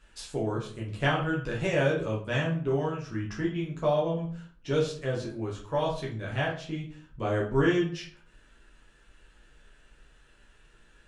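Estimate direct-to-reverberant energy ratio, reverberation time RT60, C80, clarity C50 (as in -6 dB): -4.5 dB, 0.50 s, 12.5 dB, 7.0 dB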